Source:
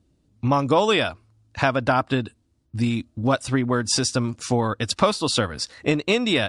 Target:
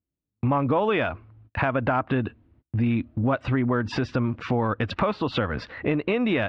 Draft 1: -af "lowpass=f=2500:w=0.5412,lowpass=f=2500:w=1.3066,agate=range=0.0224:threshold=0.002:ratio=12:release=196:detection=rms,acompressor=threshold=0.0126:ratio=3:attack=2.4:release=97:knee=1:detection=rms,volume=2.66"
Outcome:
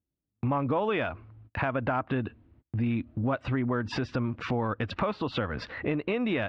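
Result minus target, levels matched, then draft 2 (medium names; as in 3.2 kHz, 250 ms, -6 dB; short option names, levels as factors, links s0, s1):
compression: peak gain reduction +5 dB
-af "lowpass=f=2500:w=0.5412,lowpass=f=2500:w=1.3066,agate=range=0.0224:threshold=0.002:ratio=12:release=196:detection=rms,acompressor=threshold=0.0299:ratio=3:attack=2.4:release=97:knee=1:detection=rms,volume=2.66"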